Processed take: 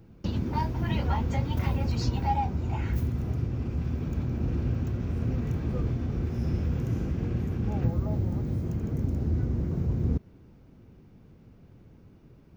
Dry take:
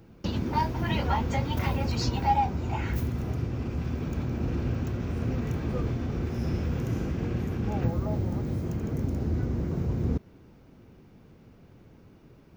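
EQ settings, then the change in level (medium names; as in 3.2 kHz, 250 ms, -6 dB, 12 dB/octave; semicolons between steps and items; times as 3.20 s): bass shelf 260 Hz +7.5 dB; -5.0 dB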